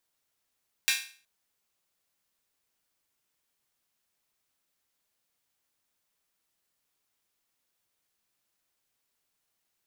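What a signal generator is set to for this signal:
open synth hi-hat length 0.37 s, high-pass 2,100 Hz, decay 0.42 s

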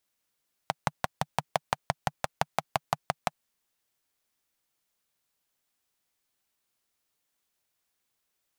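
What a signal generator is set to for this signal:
pulse-train model of a single-cylinder engine, steady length 2.63 s, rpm 700, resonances 150/750 Hz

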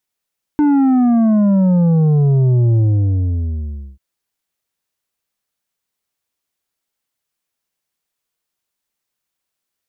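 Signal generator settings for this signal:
bass drop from 300 Hz, over 3.39 s, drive 7 dB, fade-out 1.21 s, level −10.5 dB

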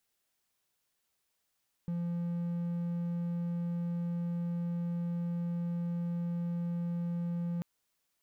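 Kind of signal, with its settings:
tone triangle 172 Hz −29.5 dBFS 5.74 s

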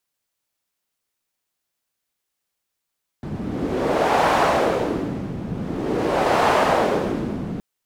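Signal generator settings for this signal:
wind from filtered noise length 4.37 s, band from 180 Hz, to 800 Hz, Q 1.5, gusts 2, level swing 11 dB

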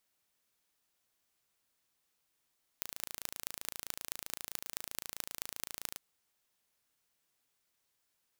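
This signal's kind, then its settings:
impulse train 27.7 per second, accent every 6, −8 dBFS 3.16 s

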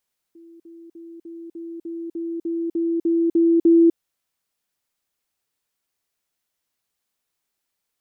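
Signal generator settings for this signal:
level staircase 334 Hz −43 dBFS, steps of 3 dB, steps 12, 0.25 s 0.05 s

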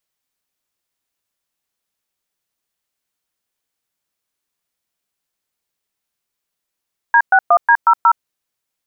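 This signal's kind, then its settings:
touch tones "D61D00", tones 67 ms, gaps 115 ms, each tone −9.5 dBFS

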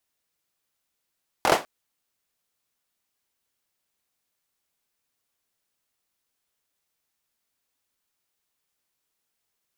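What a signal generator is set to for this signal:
synth clap length 0.20 s, apart 23 ms, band 660 Hz, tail 0.24 s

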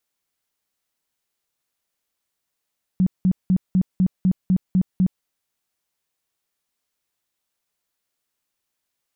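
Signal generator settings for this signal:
tone bursts 185 Hz, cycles 12, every 0.25 s, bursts 9, −13.5 dBFS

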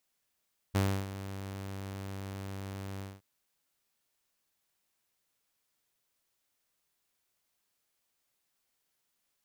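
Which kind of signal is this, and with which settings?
note with an ADSR envelope saw 97.5 Hz, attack 20 ms, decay 303 ms, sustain −14 dB, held 2.27 s, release 201 ms −22 dBFS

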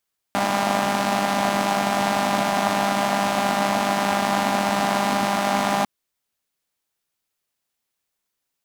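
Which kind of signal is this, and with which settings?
pulse-train model of a four-cylinder engine, steady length 5.50 s, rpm 6,000, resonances 250/710 Hz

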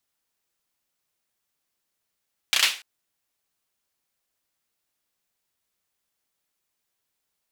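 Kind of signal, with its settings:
synth clap length 0.29 s, bursts 4, apart 32 ms, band 2,800 Hz, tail 0.34 s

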